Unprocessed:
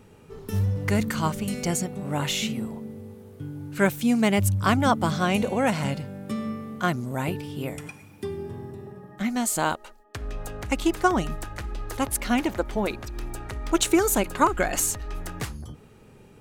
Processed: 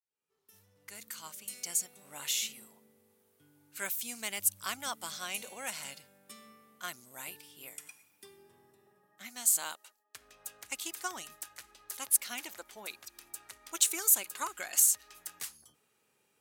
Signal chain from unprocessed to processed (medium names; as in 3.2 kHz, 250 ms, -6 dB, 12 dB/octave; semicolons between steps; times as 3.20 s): fade-in on the opening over 2.09 s; differentiator; tape noise reduction on one side only decoder only